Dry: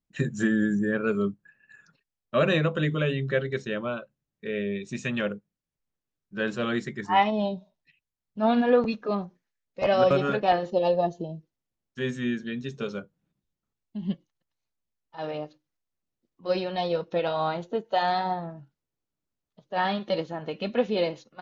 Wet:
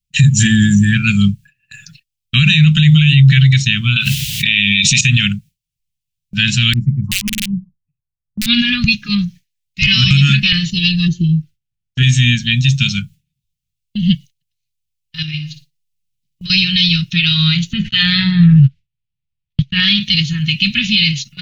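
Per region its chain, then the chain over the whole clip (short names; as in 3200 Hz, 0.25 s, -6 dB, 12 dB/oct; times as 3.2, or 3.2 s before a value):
3.96–5.01 HPF 180 Hz 6 dB/oct + bell 3200 Hz +9.5 dB 1.1 oct + fast leveller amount 100%
6.73–8.46 elliptic low-pass 1100 Hz + compressor 10:1, threshold -22 dBFS + wrapped overs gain 20 dB
11.08–12.03 high shelf 2700 Hz -11 dB + small resonant body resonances 390/1400 Hz, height 14 dB, ringing for 25 ms
15.22–16.5 comb 6.1 ms, depth 40% + compressor 5:1, threshold -37 dBFS + flutter echo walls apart 9.9 m, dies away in 0.31 s
17.73–19.8 LPF 2500 Hz + gate -53 dBFS, range -39 dB + fast leveller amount 70%
whole clip: elliptic band-stop 140–2600 Hz, stop band 80 dB; gate with hold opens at -56 dBFS; maximiser +30.5 dB; gain -1 dB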